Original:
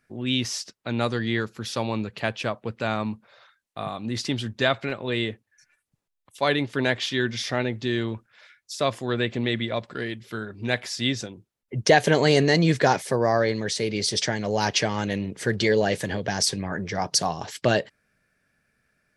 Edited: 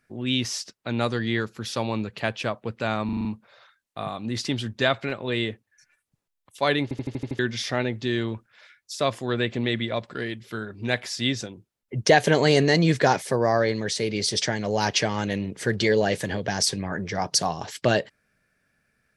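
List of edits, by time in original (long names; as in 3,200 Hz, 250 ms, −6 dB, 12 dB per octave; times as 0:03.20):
0:03.05: stutter 0.04 s, 6 plays
0:06.63: stutter in place 0.08 s, 7 plays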